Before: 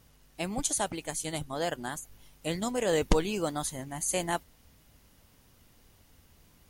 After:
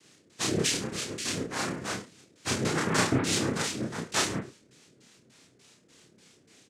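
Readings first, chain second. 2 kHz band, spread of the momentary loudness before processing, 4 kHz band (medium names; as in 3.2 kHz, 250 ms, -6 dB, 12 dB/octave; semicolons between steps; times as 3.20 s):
+6.0 dB, 10 LU, +7.0 dB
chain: treble shelf 3.2 kHz +10.5 dB; LFO low-pass square 3.4 Hz 270–3700 Hz; on a send: reverse bouncing-ball echo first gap 20 ms, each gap 1.15×, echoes 5; on the sum: noise-vocoded speech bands 3; doubling 31 ms -2 dB; trim -3 dB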